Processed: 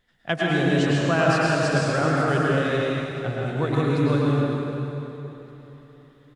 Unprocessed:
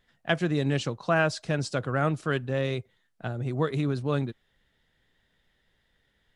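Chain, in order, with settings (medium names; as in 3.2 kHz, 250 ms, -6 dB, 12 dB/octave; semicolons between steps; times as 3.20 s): on a send: feedback delay 760 ms, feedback 38%, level -21 dB; on the sum: plate-style reverb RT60 3.1 s, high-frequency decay 0.75×, pre-delay 90 ms, DRR -5.5 dB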